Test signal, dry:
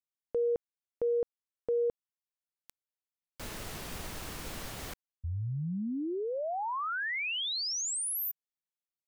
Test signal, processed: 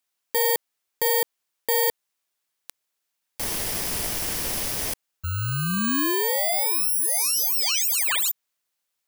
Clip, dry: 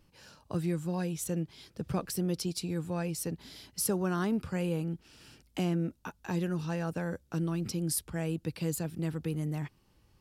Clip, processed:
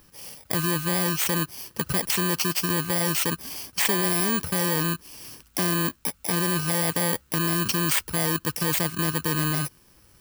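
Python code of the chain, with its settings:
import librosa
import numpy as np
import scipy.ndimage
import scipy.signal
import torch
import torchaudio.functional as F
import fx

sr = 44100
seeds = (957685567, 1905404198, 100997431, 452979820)

p1 = fx.bit_reversed(x, sr, seeds[0], block=32)
p2 = fx.low_shelf(p1, sr, hz=370.0, db=-10.0)
p3 = fx.over_compress(p2, sr, threshold_db=-38.0, ratio=-0.5)
p4 = p2 + F.gain(torch.from_numpy(p3), -2.0).numpy()
y = F.gain(torch.from_numpy(p4), 8.5).numpy()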